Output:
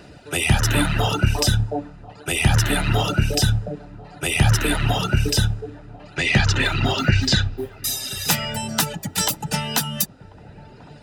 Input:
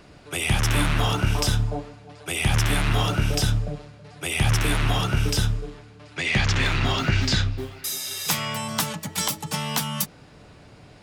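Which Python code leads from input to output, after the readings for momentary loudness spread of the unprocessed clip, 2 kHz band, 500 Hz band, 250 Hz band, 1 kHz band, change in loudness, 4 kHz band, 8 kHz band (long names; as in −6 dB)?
9 LU, +3.0 dB, +4.0 dB, +4.0 dB, +2.5 dB, +3.5 dB, +3.0 dB, +4.0 dB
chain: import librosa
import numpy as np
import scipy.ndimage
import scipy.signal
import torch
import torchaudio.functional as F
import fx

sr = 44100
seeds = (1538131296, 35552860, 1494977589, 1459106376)

p1 = fx.dereverb_blind(x, sr, rt60_s=1.4)
p2 = fx.low_shelf(p1, sr, hz=79.0, db=9.0)
p3 = fx.notch_comb(p2, sr, f0_hz=1100.0)
p4 = p3 + fx.echo_wet_lowpass(p3, sr, ms=1041, feedback_pct=63, hz=1000.0, wet_db=-20.0, dry=0)
y = p4 * librosa.db_to_amplitude(6.0)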